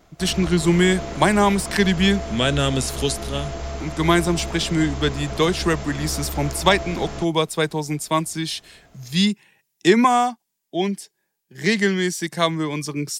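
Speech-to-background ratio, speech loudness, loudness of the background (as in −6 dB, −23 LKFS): 10.5 dB, −21.0 LKFS, −31.5 LKFS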